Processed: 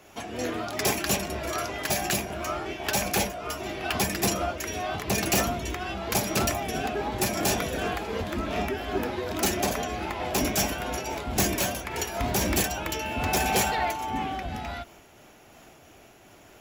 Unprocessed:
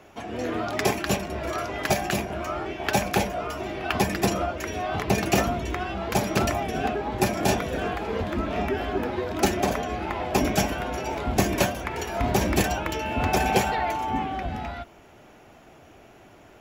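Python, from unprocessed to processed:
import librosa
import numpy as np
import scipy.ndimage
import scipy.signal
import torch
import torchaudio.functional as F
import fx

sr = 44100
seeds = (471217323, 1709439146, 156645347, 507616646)

y = fx.high_shelf(x, sr, hz=3800.0, db=11.5)
y = np.clip(y, -10.0 ** (-17.5 / 20.0), 10.0 ** (-17.5 / 20.0))
y = fx.am_noise(y, sr, seeds[0], hz=5.7, depth_pct=60)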